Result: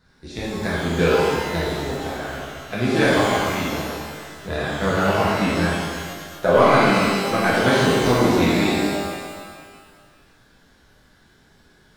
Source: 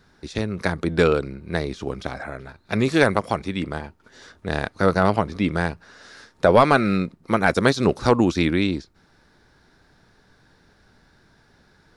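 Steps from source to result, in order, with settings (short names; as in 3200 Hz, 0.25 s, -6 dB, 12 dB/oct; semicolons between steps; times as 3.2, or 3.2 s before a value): bin magnitudes rounded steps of 15 dB; shimmer reverb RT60 1.7 s, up +12 st, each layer -8 dB, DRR -7.5 dB; gain -6 dB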